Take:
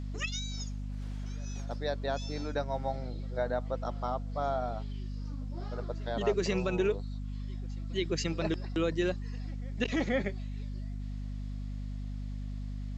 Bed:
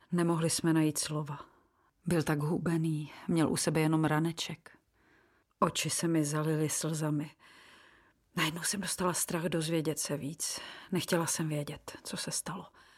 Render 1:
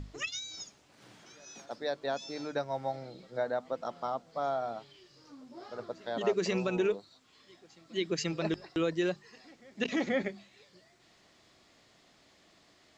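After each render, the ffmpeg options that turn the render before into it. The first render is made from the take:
-af "bandreject=f=50:t=h:w=6,bandreject=f=100:t=h:w=6,bandreject=f=150:t=h:w=6,bandreject=f=200:t=h:w=6,bandreject=f=250:t=h:w=6"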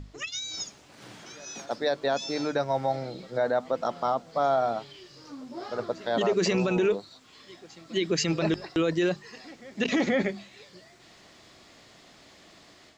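-af "alimiter=level_in=2dB:limit=-24dB:level=0:latency=1:release=17,volume=-2dB,dynaudnorm=f=280:g=3:m=9.5dB"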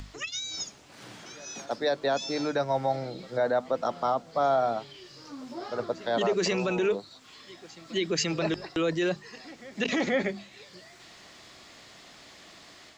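-filter_complex "[0:a]acrossover=split=420|750[a][b][c];[a]alimiter=level_in=2.5dB:limit=-24dB:level=0:latency=1,volume=-2.5dB[d];[c]acompressor=mode=upward:threshold=-45dB:ratio=2.5[e];[d][b][e]amix=inputs=3:normalize=0"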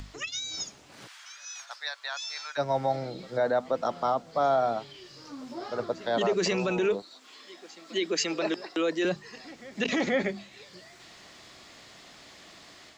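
-filter_complex "[0:a]asplit=3[a][b][c];[a]afade=t=out:st=1.06:d=0.02[d];[b]highpass=f=1.1k:w=0.5412,highpass=f=1.1k:w=1.3066,afade=t=in:st=1.06:d=0.02,afade=t=out:st=2.57:d=0.02[e];[c]afade=t=in:st=2.57:d=0.02[f];[d][e][f]amix=inputs=3:normalize=0,asettb=1/sr,asplit=3[g][h][i];[g]atrim=end=7.024[j];[h]atrim=start=7.02:end=9.05,asetpts=PTS-STARTPTS,afade=t=in:d=0.004:c=qsin,afade=t=out:st=2.026:d=0.004:c=qsin,highpass=f=240:w=0.5412,highpass=f=240:w=1.3066[k];[i]atrim=start=9.046[l];[j][k]acrossfade=d=0.004:c1=hsin:c2=qsin[m];[m][l]acrossfade=d=0.004:c1=qsin:c2=hsin"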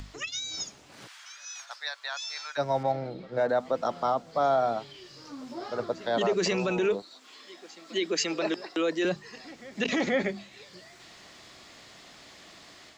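-filter_complex "[0:a]asettb=1/sr,asplit=3[a][b][c];[a]atrim=end=2.834[d];[b]atrim=start=2.83:end=3.49,asetpts=PTS-STARTPTS,afade=t=in:d=0.004:c=qsin,afade=t=out:st=0.656:d=0.004:c=qsin,adynamicsmooth=sensitivity=5:basefreq=2.6k[e];[c]atrim=start=3.486[f];[d][e]acrossfade=d=0.004:c1=hsin:c2=qsin[g];[g][f]acrossfade=d=0.004:c1=qsin:c2=hsin"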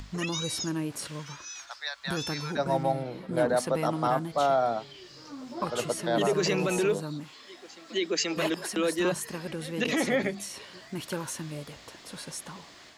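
-filter_complex "[1:a]volume=-4dB[a];[0:a][a]amix=inputs=2:normalize=0"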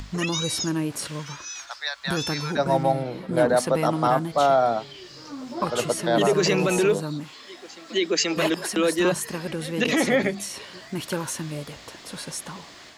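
-af "volume=5.5dB"

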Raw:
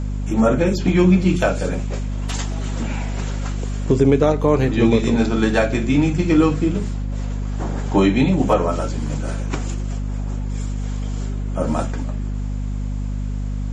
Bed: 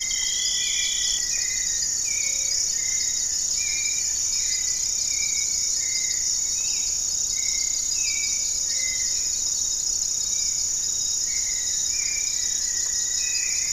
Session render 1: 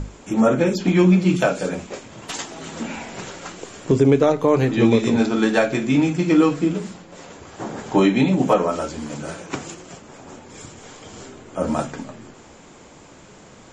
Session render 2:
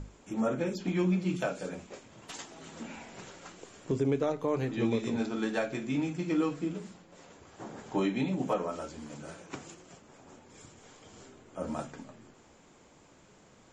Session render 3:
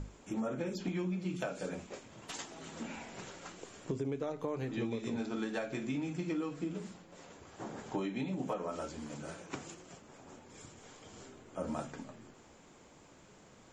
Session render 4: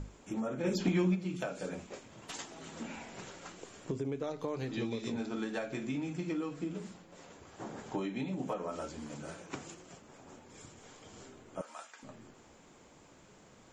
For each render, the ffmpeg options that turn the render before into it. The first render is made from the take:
-af "bandreject=f=50:t=h:w=6,bandreject=f=100:t=h:w=6,bandreject=f=150:t=h:w=6,bandreject=f=200:t=h:w=6,bandreject=f=250:t=h:w=6"
-af "volume=-13.5dB"
-af "acompressor=threshold=-33dB:ratio=6"
-filter_complex "[0:a]asplit=3[a][b][c];[a]afade=t=out:st=0.63:d=0.02[d];[b]acontrast=73,afade=t=in:st=0.63:d=0.02,afade=t=out:st=1.14:d=0.02[e];[c]afade=t=in:st=1.14:d=0.02[f];[d][e][f]amix=inputs=3:normalize=0,asettb=1/sr,asplit=3[g][h][i];[g]atrim=end=4.244[j];[h]atrim=start=4.24:end=5.12,asetpts=PTS-STARTPTS,afade=t=in:d=0.004:c=qsin,afade=t=out:st=0.876:d=0.004:c=qsin,equalizer=f=4.6k:w=1.5:g=8.5[k];[i]atrim=start=5.116[l];[j][k]acrossfade=d=0.004:c1=hsin:c2=qsin[m];[m][l]acrossfade=d=0.004:c1=qsin:c2=hsin,asettb=1/sr,asplit=3[n][o][p];[n]atrim=end=11.614[q];[o]atrim=start=11.61:end=12.03,asetpts=PTS-STARTPTS,afade=t=in:d=0.004:c=qsin,afade=t=out:st=0.416:d=0.004:c=qsin,highpass=1.2k[r];[p]atrim=start=12.026[s];[q][r]acrossfade=d=0.004:c1=hsin:c2=qsin[t];[t][s]acrossfade=d=0.004:c1=qsin:c2=hsin"

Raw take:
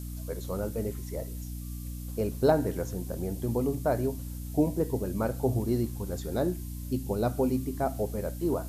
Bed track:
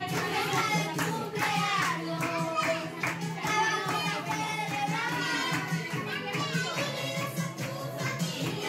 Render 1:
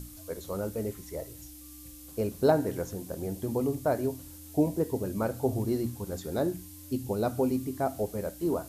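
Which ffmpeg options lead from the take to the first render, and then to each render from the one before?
-af "bandreject=f=60:t=h:w=6,bandreject=f=120:t=h:w=6,bandreject=f=180:t=h:w=6,bandreject=f=240:t=h:w=6"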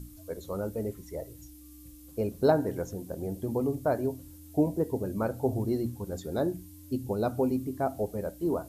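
-af "afftdn=nr=8:nf=-48"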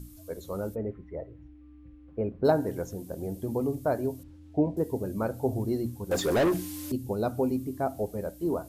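-filter_complex "[0:a]asplit=3[a][b][c];[a]afade=t=out:st=0.74:d=0.02[d];[b]lowpass=f=2.2k:w=0.5412,lowpass=f=2.2k:w=1.3066,afade=t=in:st=0.74:d=0.02,afade=t=out:st=2.44:d=0.02[e];[c]afade=t=in:st=2.44:d=0.02[f];[d][e][f]amix=inputs=3:normalize=0,asettb=1/sr,asplit=3[g][h][i];[g]atrim=end=4.234[j];[h]atrim=start=4.23:end=4.77,asetpts=PTS-STARTPTS,afade=t=in:d=0.004:c=qsin,afade=t=out:st=0.536:d=0.004:c=qsin,lowpass=2.7k[k];[i]atrim=start=4.766[l];[j][k]acrossfade=d=0.004:c1=hsin:c2=qsin[m];[m][l]acrossfade=d=0.004:c1=qsin:c2=hsin,asettb=1/sr,asplit=3[n][o][p];[n]atrim=end=6.114[q];[o]atrim=start=6.11:end=6.92,asetpts=PTS-STARTPTS,afade=t=in:d=0.004:c=qsin,afade=t=out:st=0.806:d=0.004:c=qsin,asplit=2[r][s];[s]highpass=f=720:p=1,volume=28dB,asoftclip=type=tanh:threshold=-16.5dB[t];[r][t]amix=inputs=2:normalize=0,lowpass=f=3.9k:p=1,volume=-6dB[u];[p]atrim=start=6.916[v];[q][u]acrossfade=d=0.004:c1=hsin:c2=qsin[w];[w][v]acrossfade=d=0.004:c1=qsin:c2=hsin"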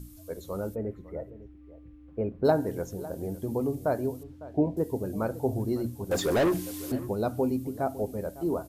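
-filter_complex "[0:a]asplit=2[a][b];[b]adelay=553.9,volume=-17dB,highshelf=f=4k:g=-12.5[c];[a][c]amix=inputs=2:normalize=0"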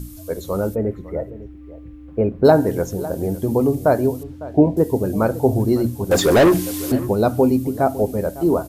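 -af "volume=11.5dB,alimiter=limit=-2dB:level=0:latency=1"

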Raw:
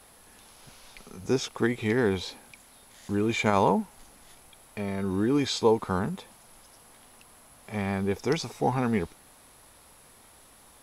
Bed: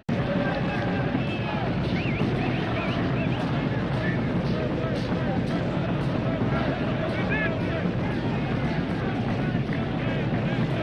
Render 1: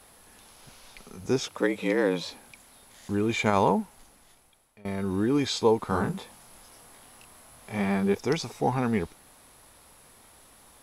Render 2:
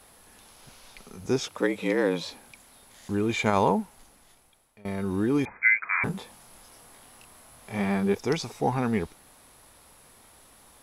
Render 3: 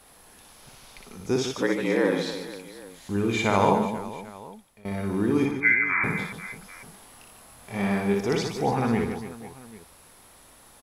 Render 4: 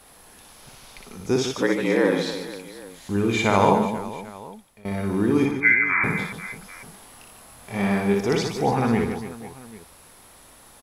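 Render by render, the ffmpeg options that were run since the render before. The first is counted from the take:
-filter_complex "[0:a]asettb=1/sr,asplit=3[a][b][c];[a]atrim=end=1.484[d];[b]atrim=start=1.48:end=2.31,asetpts=PTS-STARTPTS,afade=t=in:d=0.004:c=qsin,afade=t=out:st=0.826:d=0.004:c=qsin,afreqshift=78[e];[c]atrim=start=2.306[f];[d][e]acrossfade=d=0.004:c1=hsin:c2=qsin[g];[g][f]acrossfade=d=0.004:c1=qsin:c2=hsin,asettb=1/sr,asplit=3[h][i][j];[h]atrim=end=5.874[k];[i]atrim=start=5.87:end=8.15,asetpts=PTS-STARTPTS,afade=t=in:d=0.004:c=qsin,afade=t=out:st=2.276:d=0.004:c=qsin,asplit=2[l][m];[m]adelay=25,volume=-2dB[n];[l][n]amix=inputs=2:normalize=0,atrim=end_sample=100548[o];[j]atrim=start=8.146[p];[k][o]acrossfade=d=0.004:c1=hsin:c2=qsin[q];[q][p]acrossfade=d=0.004:c1=qsin:c2=hsin,asplit=2[r][s];[r]atrim=end=4.85,asetpts=PTS-STARTPTS,afade=t=out:st=3.74:d=1.11:silence=0.0707946[t];[s]atrim=start=4.85,asetpts=PTS-STARTPTS,afade=t=in:d=0.004:c=hsin:silence=0.0707946[u];[t][u]concat=n=2:v=0:a=1"
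-filter_complex "[0:a]asettb=1/sr,asplit=3[a][b][c];[a]atrim=end=5.454[d];[b]atrim=start=5.45:end=6.04,asetpts=PTS-STARTPTS,afade=t=in:d=0.004:c=qsin,afade=t=out:st=0.586:d=0.004:c=qsin,lowpass=f=2.1k:t=q:w=0.5098,lowpass=f=2.1k:t=q:w=0.6013,lowpass=f=2.1k:t=q:w=0.9,lowpass=f=2.1k:t=q:w=2.563,afreqshift=-2500[e];[c]atrim=start=6.036[f];[d][e]acrossfade=d=0.004:c1=hsin:c2=qsin[g];[g][f]acrossfade=d=0.004:c1=qsin:c2=hsin"
-af "aecho=1:1:60|150|285|487.5|791.2:0.631|0.398|0.251|0.158|0.1"
-af "volume=3dB"

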